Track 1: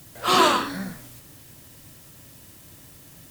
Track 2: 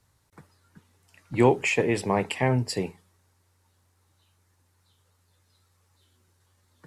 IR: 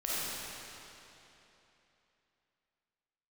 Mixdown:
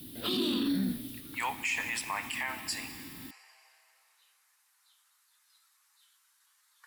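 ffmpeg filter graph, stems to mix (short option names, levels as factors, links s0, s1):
-filter_complex "[0:a]firequalizer=gain_entry='entry(160,0);entry(240,15);entry(550,-5);entry(1100,-11);entry(3600,9);entry(6700,-14);entry(10000,4)':delay=0.05:min_phase=1,acrossover=split=410|3000[s0][s1][s2];[s1]acompressor=threshold=0.0355:ratio=6[s3];[s0][s3][s2]amix=inputs=3:normalize=0,volume=0.668[s4];[1:a]highpass=f=1100:w=0.5412,highpass=f=1100:w=1.3066,equalizer=f=13000:w=0.84:g=5.5,volume=1.06,asplit=2[s5][s6];[s6]volume=0.119[s7];[2:a]atrim=start_sample=2205[s8];[s7][s8]afir=irnorm=-1:irlink=0[s9];[s4][s5][s9]amix=inputs=3:normalize=0,alimiter=limit=0.075:level=0:latency=1:release=39"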